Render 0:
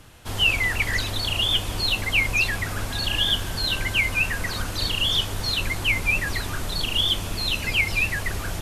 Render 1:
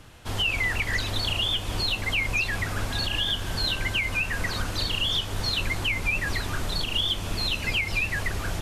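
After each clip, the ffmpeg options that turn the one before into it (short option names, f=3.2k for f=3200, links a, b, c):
-af "equalizer=f=13k:t=o:w=1.2:g=-5.5,alimiter=limit=-16.5dB:level=0:latency=1:release=183"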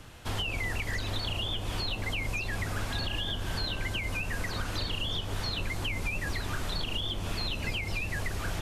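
-filter_complex "[0:a]acrossover=split=910|4000[a][b][c];[a]acompressor=threshold=-30dB:ratio=4[d];[b]acompressor=threshold=-37dB:ratio=4[e];[c]acompressor=threshold=-46dB:ratio=4[f];[d][e][f]amix=inputs=3:normalize=0"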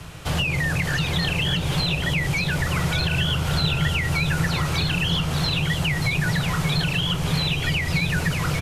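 -filter_complex "[0:a]afreqshift=-180,asplit=2[a][b];[b]asoftclip=type=hard:threshold=-35dB,volume=-10dB[c];[a][c]amix=inputs=2:normalize=0,aecho=1:1:583:0.447,volume=7.5dB"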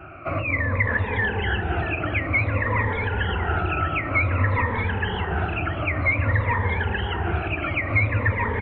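-af "afftfilt=real='re*pow(10,19/40*sin(2*PI*(1.1*log(max(b,1)*sr/1024/100)/log(2)-(-0.54)*(pts-256)/sr)))':imag='im*pow(10,19/40*sin(2*PI*(1.1*log(max(b,1)*sr/1024/100)/log(2)-(-0.54)*(pts-256)/sr)))':win_size=1024:overlap=0.75,highpass=f=160:t=q:w=0.5412,highpass=f=160:t=q:w=1.307,lowpass=f=2.2k:t=q:w=0.5176,lowpass=f=2.2k:t=q:w=0.7071,lowpass=f=2.2k:t=q:w=1.932,afreqshift=-68,aecho=1:1:635:0.316"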